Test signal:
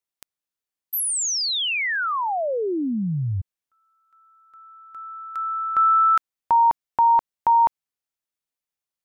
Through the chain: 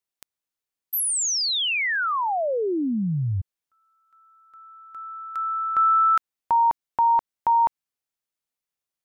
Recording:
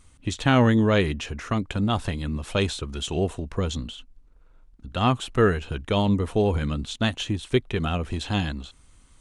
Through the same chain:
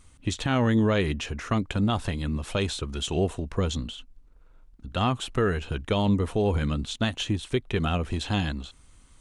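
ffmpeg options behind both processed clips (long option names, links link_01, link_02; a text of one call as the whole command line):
ffmpeg -i in.wav -af "alimiter=limit=-15dB:level=0:latency=1:release=129" out.wav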